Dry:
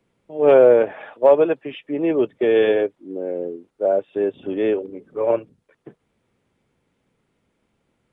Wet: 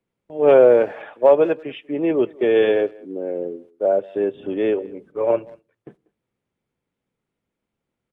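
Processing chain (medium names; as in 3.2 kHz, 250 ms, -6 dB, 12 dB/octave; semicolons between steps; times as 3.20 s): gate -46 dBFS, range -12 dB; speakerphone echo 190 ms, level -23 dB; on a send at -23 dB: reverberation RT60 0.40 s, pre-delay 5 ms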